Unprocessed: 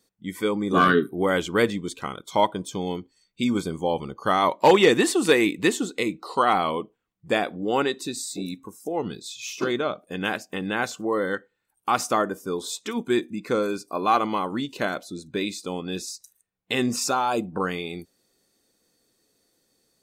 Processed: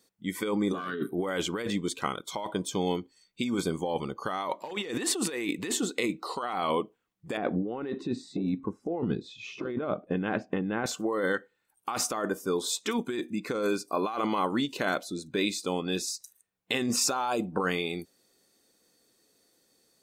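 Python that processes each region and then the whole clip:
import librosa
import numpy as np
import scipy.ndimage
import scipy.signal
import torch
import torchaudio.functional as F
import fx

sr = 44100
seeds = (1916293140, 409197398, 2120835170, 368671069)

y = fx.chain(x, sr, fx.lowpass(hz=2100.0, slope=12),
    fx.low_shelf(hz=430.0, db=11.5), at=(7.37, 10.86))
y = fx.low_shelf(y, sr, hz=120.0, db=-8.5)
y = fx.over_compress(y, sr, threshold_db=-27.0, ratio=-1.0)
y = y * librosa.db_to_amplitude(-2.5)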